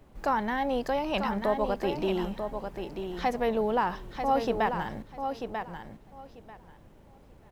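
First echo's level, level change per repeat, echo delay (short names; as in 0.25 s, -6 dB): -7.0 dB, -15.0 dB, 0.941 s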